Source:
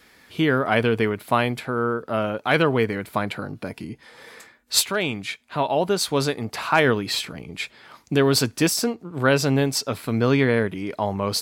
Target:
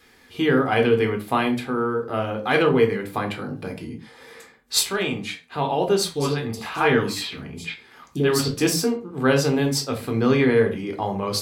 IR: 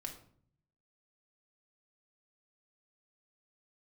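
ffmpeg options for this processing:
-filter_complex "[0:a]asettb=1/sr,asplit=3[a][b][c];[a]atrim=end=6.114[d];[b]atrim=start=6.11:end=8.48,asetpts=PTS-STARTPTS,afade=t=in:d=0.004:c=qsin,afade=t=out:st=2.366:d=0.004:c=qsin,acrossover=split=620|4300[e][f][g];[e]adelay=40[h];[f]adelay=80[i];[h][i][g]amix=inputs=3:normalize=0,atrim=end_sample=104517[j];[c]atrim=start=8.476[k];[d][j]acrossfade=d=0.004:c1=hsin:c2=qsin[l];[l][k]acrossfade=d=0.004:c1=qsin:c2=hsin[m];[1:a]atrim=start_sample=2205,afade=t=out:st=0.3:d=0.01,atrim=end_sample=13671,asetrate=70560,aresample=44100[n];[m][n]afir=irnorm=-1:irlink=0,volume=6dB"

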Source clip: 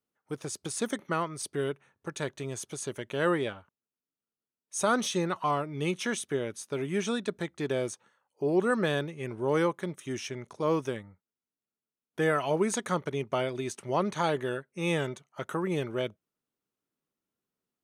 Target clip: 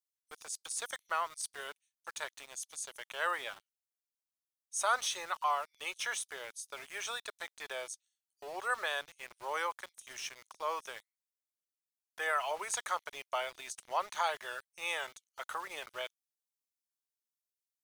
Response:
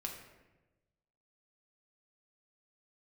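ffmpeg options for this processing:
-filter_complex "[0:a]highpass=f=720:w=0.5412,highpass=f=720:w=1.3066,acrossover=split=3900[a][b];[a]aeval=exprs='val(0)*gte(abs(val(0)),0.00473)':c=same[c];[c][b]amix=inputs=2:normalize=0,volume=-1.5dB"

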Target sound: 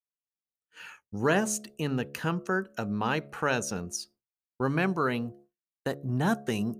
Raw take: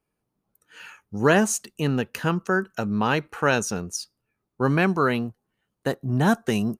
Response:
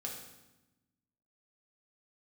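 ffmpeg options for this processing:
-filter_complex "[0:a]bandreject=f=70.72:t=h:w=4,bandreject=f=141.44:t=h:w=4,bandreject=f=212.16:t=h:w=4,bandreject=f=282.88:t=h:w=4,bandreject=f=353.6:t=h:w=4,bandreject=f=424.32:t=h:w=4,bandreject=f=495.04:t=h:w=4,bandreject=f=565.76:t=h:w=4,bandreject=f=636.48:t=h:w=4,bandreject=f=707.2:t=h:w=4,agate=range=-33dB:threshold=-44dB:ratio=3:detection=peak,asplit=2[a][b];[b]acompressor=threshold=-31dB:ratio=6,volume=-2dB[c];[a][c]amix=inputs=2:normalize=0,volume=-7.5dB"

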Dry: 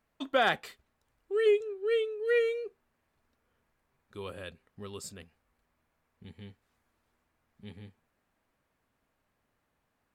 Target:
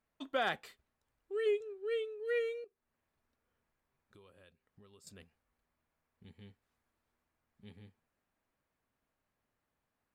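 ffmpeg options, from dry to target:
-filter_complex "[0:a]asettb=1/sr,asplit=3[a][b][c];[a]atrim=end=2.644[d];[b]atrim=start=2.64:end=5.07,asetpts=PTS-STARTPTS,afade=t=in:d=0.004:c=qsin,afade=t=out:st=2.426:d=0.004:c=qsin,acompressor=threshold=-52dB:ratio=6[e];[c]atrim=start=5.066[f];[d][e]acrossfade=d=0.004:c1=hsin:c2=qsin[g];[g][f]acrossfade=d=0.004:c1=qsin:c2=hsin,volume=-7.5dB"

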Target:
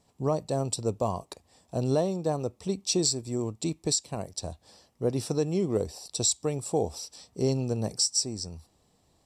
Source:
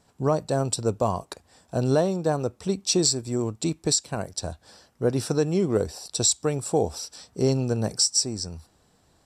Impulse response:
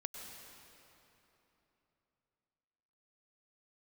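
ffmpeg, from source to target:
-af "equalizer=f=1.5k:w=4.2:g=-12,volume=-4dB"

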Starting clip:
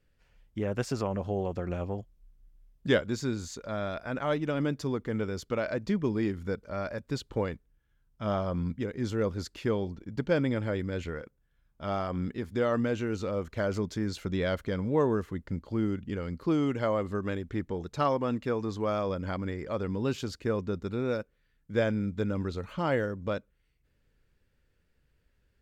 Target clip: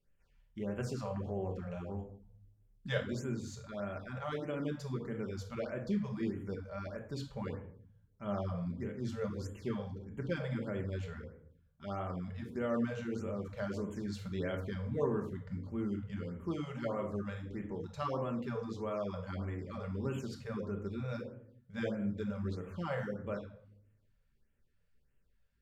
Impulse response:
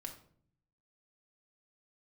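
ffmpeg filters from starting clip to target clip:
-filter_complex "[1:a]atrim=start_sample=2205,asetrate=36162,aresample=44100[a];[0:a][a]afir=irnorm=-1:irlink=0,afftfilt=real='re*(1-between(b*sr/1024,280*pow(4900/280,0.5+0.5*sin(2*PI*1.6*pts/sr))/1.41,280*pow(4900/280,0.5+0.5*sin(2*PI*1.6*pts/sr))*1.41))':imag='im*(1-between(b*sr/1024,280*pow(4900/280,0.5+0.5*sin(2*PI*1.6*pts/sr))/1.41,280*pow(4900/280,0.5+0.5*sin(2*PI*1.6*pts/sr))*1.41))':win_size=1024:overlap=0.75,volume=-5.5dB"

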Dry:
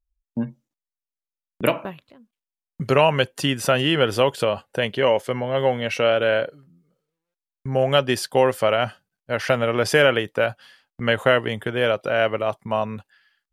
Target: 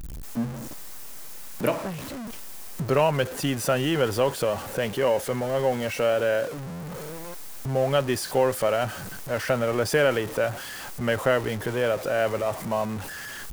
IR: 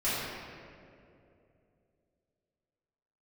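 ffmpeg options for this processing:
-af "aeval=exprs='val(0)+0.5*0.0631*sgn(val(0))':c=same,equalizer=f=3.2k:t=o:w=1.6:g=-5.5,volume=-5dB"

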